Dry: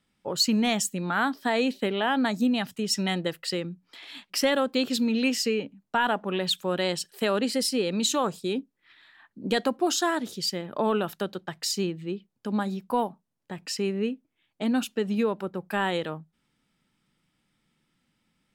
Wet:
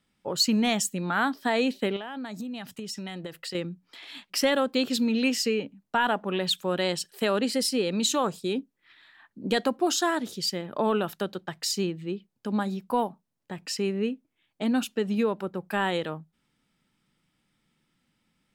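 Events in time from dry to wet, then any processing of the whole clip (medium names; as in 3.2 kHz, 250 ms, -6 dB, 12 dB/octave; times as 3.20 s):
1.96–3.55 s: compression 12:1, threshold -32 dBFS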